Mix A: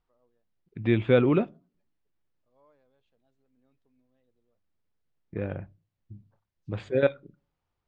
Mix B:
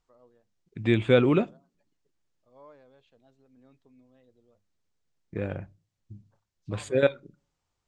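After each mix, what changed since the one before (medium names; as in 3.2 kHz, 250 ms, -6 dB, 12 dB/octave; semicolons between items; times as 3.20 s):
first voice +11.5 dB; second voice: remove distance through air 220 m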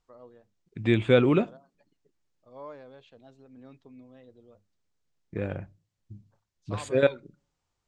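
first voice +9.0 dB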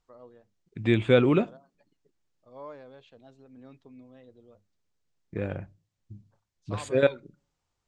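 no change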